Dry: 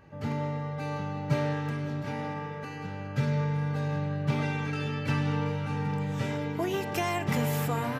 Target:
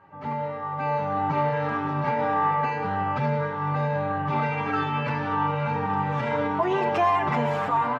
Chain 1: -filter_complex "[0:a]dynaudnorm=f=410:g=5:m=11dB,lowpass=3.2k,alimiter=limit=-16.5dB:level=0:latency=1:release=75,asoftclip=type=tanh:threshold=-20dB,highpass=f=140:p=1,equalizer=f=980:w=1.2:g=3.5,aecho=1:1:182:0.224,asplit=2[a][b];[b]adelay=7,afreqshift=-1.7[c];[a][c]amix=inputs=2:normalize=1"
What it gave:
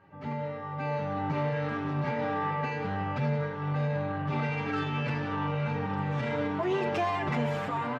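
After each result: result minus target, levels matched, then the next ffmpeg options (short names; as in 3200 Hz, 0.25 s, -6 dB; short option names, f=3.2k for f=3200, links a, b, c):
soft clip: distortion +11 dB; 1000 Hz band -4.0 dB
-filter_complex "[0:a]dynaudnorm=f=410:g=5:m=11dB,lowpass=3.2k,alimiter=limit=-16.5dB:level=0:latency=1:release=75,asoftclip=type=tanh:threshold=-13dB,highpass=f=140:p=1,equalizer=f=980:w=1.2:g=3.5,aecho=1:1:182:0.224,asplit=2[a][b];[b]adelay=7,afreqshift=-1.7[c];[a][c]amix=inputs=2:normalize=1"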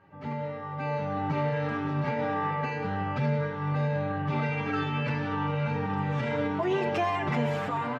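1000 Hz band -4.0 dB
-filter_complex "[0:a]dynaudnorm=f=410:g=5:m=11dB,lowpass=3.2k,alimiter=limit=-16.5dB:level=0:latency=1:release=75,asoftclip=type=tanh:threshold=-13dB,highpass=f=140:p=1,equalizer=f=980:w=1.2:g=13,aecho=1:1:182:0.224,asplit=2[a][b];[b]adelay=7,afreqshift=-1.7[c];[a][c]amix=inputs=2:normalize=1"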